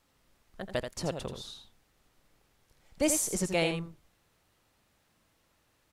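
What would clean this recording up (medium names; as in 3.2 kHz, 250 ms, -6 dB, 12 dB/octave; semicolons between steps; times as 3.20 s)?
inverse comb 83 ms -7.5 dB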